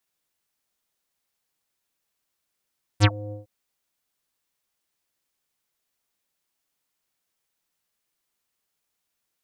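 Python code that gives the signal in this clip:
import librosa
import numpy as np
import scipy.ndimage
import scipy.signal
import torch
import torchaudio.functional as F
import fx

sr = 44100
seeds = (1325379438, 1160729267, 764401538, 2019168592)

y = fx.sub_voice(sr, note=44, wave='square', cutoff_hz=580.0, q=5.9, env_oct=4.5, env_s=0.11, attack_ms=44.0, decay_s=0.05, sustain_db=-23.0, release_s=0.14, note_s=0.32, slope=24)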